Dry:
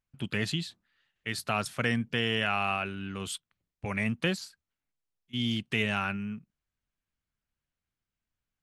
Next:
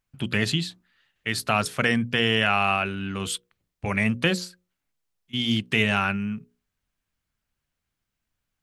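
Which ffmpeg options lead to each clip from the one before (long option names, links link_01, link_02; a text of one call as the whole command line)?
ffmpeg -i in.wav -af "bandreject=frequency=60:width_type=h:width=6,bandreject=frequency=120:width_type=h:width=6,bandreject=frequency=180:width_type=h:width=6,bandreject=frequency=240:width_type=h:width=6,bandreject=frequency=300:width_type=h:width=6,bandreject=frequency=360:width_type=h:width=6,bandreject=frequency=420:width_type=h:width=6,bandreject=frequency=480:width_type=h:width=6,bandreject=frequency=540:width_type=h:width=6,volume=7dB" out.wav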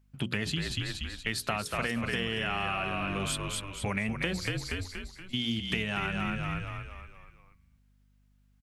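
ffmpeg -i in.wav -filter_complex "[0:a]asplit=2[link_01][link_02];[link_02]asplit=6[link_03][link_04][link_05][link_06][link_07][link_08];[link_03]adelay=237,afreqshift=-46,volume=-5.5dB[link_09];[link_04]adelay=474,afreqshift=-92,volume=-12.2dB[link_10];[link_05]adelay=711,afreqshift=-138,volume=-19dB[link_11];[link_06]adelay=948,afreqshift=-184,volume=-25.7dB[link_12];[link_07]adelay=1185,afreqshift=-230,volume=-32.5dB[link_13];[link_08]adelay=1422,afreqshift=-276,volume=-39.2dB[link_14];[link_09][link_10][link_11][link_12][link_13][link_14]amix=inputs=6:normalize=0[link_15];[link_01][link_15]amix=inputs=2:normalize=0,acompressor=threshold=-28dB:ratio=6,aeval=exprs='val(0)+0.000631*(sin(2*PI*50*n/s)+sin(2*PI*2*50*n/s)/2+sin(2*PI*3*50*n/s)/3+sin(2*PI*4*50*n/s)/4+sin(2*PI*5*50*n/s)/5)':channel_layout=same" out.wav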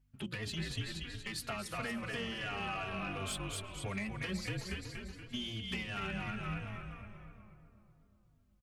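ffmpeg -i in.wav -filter_complex "[0:a]asoftclip=type=tanh:threshold=-23.5dB,asplit=2[link_01][link_02];[link_02]adelay=372,lowpass=frequency=1300:poles=1,volume=-9.5dB,asplit=2[link_03][link_04];[link_04]adelay=372,lowpass=frequency=1300:poles=1,volume=0.52,asplit=2[link_05][link_06];[link_06]adelay=372,lowpass=frequency=1300:poles=1,volume=0.52,asplit=2[link_07][link_08];[link_08]adelay=372,lowpass=frequency=1300:poles=1,volume=0.52,asplit=2[link_09][link_10];[link_10]adelay=372,lowpass=frequency=1300:poles=1,volume=0.52,asplit=2[link_11][link_12];[link_12]adelay=372,lowpass=frequency=1300:poles=1,volume=0.52[link_13];[link_03][link_05][link_07][link_09][link_11][link_13]amix=inputs=6:normalize=0[link_14];[link_01][link_14]amix=inputs=2:normalize=0,asplit=2[link_15][link_16];[link_16]adelay=3.6,afreqshift=-2.9[link_17];[link_15][link_17]amix=inputs=2:normalize=1,volume=-3dB" out.wav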